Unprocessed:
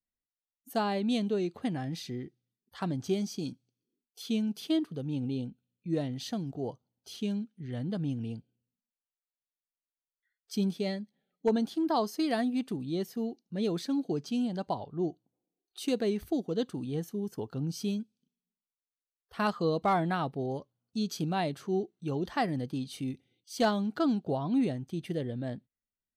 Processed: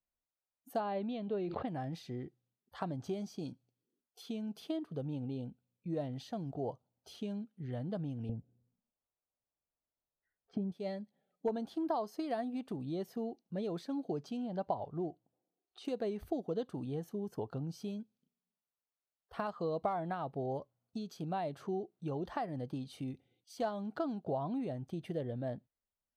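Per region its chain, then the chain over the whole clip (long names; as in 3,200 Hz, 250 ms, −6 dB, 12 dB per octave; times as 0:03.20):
0:00.80–0:01.68: low-pass filter 4,100 Hz 24 dB per octave + level that may fall only so fast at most 65 dB per second
0:08.29–0:10.72: low-pass filter 1,600 Hz + low-shelf EQ 490 Hz +11.5 dB
0:14.37–0:15.85: one scale factor per block 7 bits + high-frequency loss of the air 100 metres
whole clip: guitar amp tone stack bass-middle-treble 5-5-5; downward compressor 6 to 1, threshold −51 dBFS; drawn EQ curve 220 Hz 0 dB, 620 Hz +10 dB, 2,000 Hz −9 dB, 6,300 Hz −17 dB; level +14.5 dB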